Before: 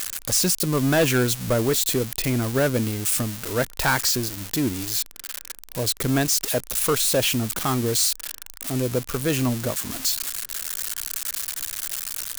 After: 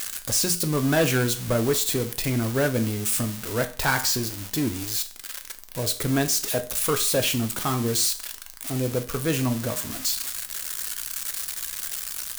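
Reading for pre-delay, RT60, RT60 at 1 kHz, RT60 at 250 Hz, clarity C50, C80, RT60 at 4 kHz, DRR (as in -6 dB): 5 ms, 0.40 s, 0.40 s, 0.40 s, 14.0 dB, 18.5 dB, 0.40 s, 6.5 dB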